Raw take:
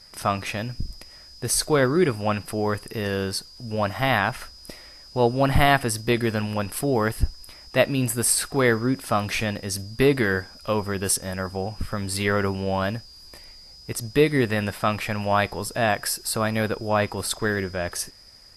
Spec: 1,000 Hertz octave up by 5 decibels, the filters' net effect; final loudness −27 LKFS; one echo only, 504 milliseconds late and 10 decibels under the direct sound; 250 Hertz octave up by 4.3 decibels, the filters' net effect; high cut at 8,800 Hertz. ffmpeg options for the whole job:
ffmpeg -i in.wav -af "lowpass=8800,equalizer=frequency=250:width_type=o:gain=5,equalizer=frequency=1000:width_type=o:gain=6.5,aecho=1:1:504:0.316,volume=-6dB" out.wav

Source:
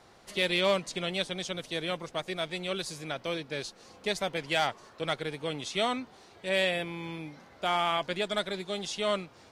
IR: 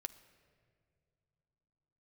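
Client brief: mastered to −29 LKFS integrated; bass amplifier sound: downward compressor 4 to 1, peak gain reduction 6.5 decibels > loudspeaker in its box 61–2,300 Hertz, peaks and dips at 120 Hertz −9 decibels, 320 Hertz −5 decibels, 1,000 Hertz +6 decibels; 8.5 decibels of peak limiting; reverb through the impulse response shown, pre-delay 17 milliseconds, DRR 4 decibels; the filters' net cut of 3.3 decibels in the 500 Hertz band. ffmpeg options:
-filter_complex "[0:a]equalizer=frequency=500:width_type=o:gain=-4,alimiter=level_in=0.5dB:limit=-24dB:level=0:latency=1,volume=-0.5dB,asplit=2[link_01][link_02];[1:a]atrim=start_sample=2205,adelay=17[link_03];[link_02][link_03]afir=irnorm=-1:irlink=0,volume=-1dB[link_04];[link_01][link_04]amix=inputs=2:normalize=0,acompressor=threshold=-35dB:ratio=4,highpass=frequency=61:width=0.5412,highpass=frequency=61:width=1.3066,equalizer=frequency=120:width_type=q:width=4:gain=-9,equalizer=frequency=320:width_type=q:width=4:gain=-5,equalizer=frequency=1000:width_type=q:width=4:gain=6,lowpass=frequency=2300:width=0.5412,lowpass=frequency=2300:width=1.3066,volume=12.5dB"

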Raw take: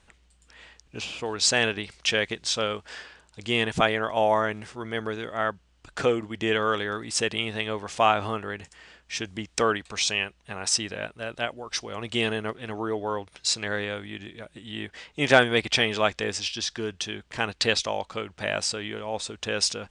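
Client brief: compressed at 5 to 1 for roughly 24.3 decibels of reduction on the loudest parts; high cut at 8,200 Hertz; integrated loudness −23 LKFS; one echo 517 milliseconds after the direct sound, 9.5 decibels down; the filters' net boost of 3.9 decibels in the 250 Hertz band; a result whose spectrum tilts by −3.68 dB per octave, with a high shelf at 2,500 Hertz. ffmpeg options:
ffmpeg -i in.wav -af "lowpass=8200,equalizer=frequency=250:width_type=o:gain=5,highshelf=frequency=2500:gain=-5,acompressor=threshold=-40dB:ratio=5,aecho=1:1:517:0.335,volume=19.5dB" out.wav

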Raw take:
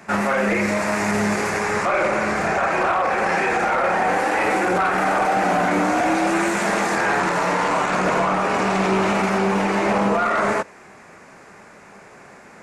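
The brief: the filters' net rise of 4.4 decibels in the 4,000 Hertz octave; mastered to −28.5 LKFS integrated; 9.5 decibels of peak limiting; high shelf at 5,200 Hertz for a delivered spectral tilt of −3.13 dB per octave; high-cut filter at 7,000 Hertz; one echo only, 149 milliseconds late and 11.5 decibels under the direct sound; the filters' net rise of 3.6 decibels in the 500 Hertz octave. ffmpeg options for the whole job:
ffmpeg -i in.wav -af "lowpass=7000,equalizer=frequency=500:width_type=o:gain=4.5,equalizer=frequency=4000:width_type=o:gain=8,highshelf=frequency=5200:gain=-4,alimiter=limit=-16.5dB:level=0:latency=1,aecho=1:1:149:0.266,volume=-5dB" out.wav

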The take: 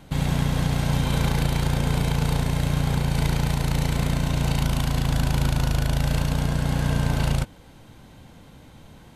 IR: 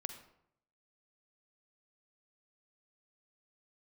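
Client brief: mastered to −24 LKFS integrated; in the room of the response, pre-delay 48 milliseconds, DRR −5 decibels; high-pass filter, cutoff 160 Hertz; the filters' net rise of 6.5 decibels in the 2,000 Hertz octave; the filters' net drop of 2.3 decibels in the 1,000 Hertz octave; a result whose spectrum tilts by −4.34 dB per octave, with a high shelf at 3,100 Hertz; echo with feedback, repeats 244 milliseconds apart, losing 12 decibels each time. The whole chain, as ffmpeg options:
-filter_complex "[0:a]highpass=160,equalizer=frequency=1000:width_type=o:gain=-5.5,equalizer=frequency=2000:width_type=o:gain=8.5,highshelf=frequency=3100:gain=4,aecho=1:1:244|488|732:0.251|0.0628|0.0157,asplit=2[link_01][link_02];[1:a]atrim=start_sample=2205,adelay=48[link_03];[link_02][link_03]afir=irnorm=-1:irlink=0,volume=7dB[link_04];[link_01][link_04]amix=inputs=2:normalize=0,volume=-5.5dB"

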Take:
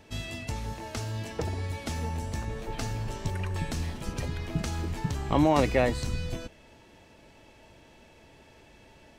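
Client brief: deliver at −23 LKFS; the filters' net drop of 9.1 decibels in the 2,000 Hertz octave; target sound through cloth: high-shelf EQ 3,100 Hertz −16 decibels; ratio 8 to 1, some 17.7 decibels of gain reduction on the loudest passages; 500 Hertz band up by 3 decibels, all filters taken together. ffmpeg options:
ffmpeg -i in.wav -af "equalizer=frequency=500:width_type=o:gain=4.5,equalizer=frequency=2000:width_type=o:gain=-5.5,acompressor=threshold=-35dB:ratio=8,highshelf=frequency=3100:gain=-16,volume=18dB" out.wav

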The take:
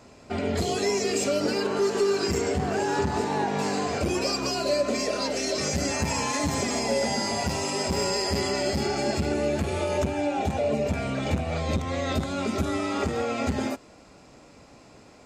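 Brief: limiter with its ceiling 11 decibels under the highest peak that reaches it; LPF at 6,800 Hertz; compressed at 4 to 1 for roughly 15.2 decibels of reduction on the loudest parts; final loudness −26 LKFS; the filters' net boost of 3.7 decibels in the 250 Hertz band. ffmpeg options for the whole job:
ffmpeg -i in.wav -af "lowpass=6800,equalizer=frequency=250:width_type=o:gain=4.5,acompressor=threshold=-38dB:ratio=4,volume=19dB,alimiter=limit=-18dB:level=0:latency=1" out.wav

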